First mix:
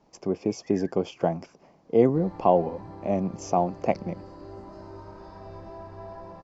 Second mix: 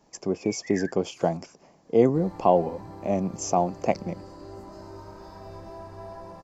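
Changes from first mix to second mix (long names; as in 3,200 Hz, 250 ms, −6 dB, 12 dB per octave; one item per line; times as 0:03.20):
first sound +11.5 dB
master: remove high-frequency loss of the air 130 metres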